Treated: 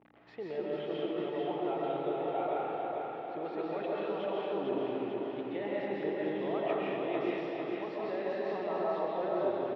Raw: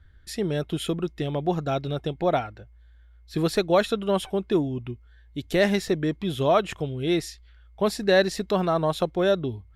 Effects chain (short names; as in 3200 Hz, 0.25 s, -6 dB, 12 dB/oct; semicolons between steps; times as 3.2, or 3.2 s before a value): bit-crush 8-bit; hum 60 Hz, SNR 22 dB; reverse; compressor, threshold -28 dBFS, peak gain reduction 12.5 dB; reverse; speaker cabinet 360–2500 Hz, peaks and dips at 440 Hz +5 dB, 830 Hz +8 dB, 1600 Hz -6 dB; limiter -26.5 dBFS, peak gain reduction 8.5 dB; on a send: feedback echo 0.446 s, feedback 57%, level -4 dB; on the sum: digital reverb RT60 1.6 s, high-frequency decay 0.9×, pre-delay 95 ms, DRR -5 dB; gain -5 dB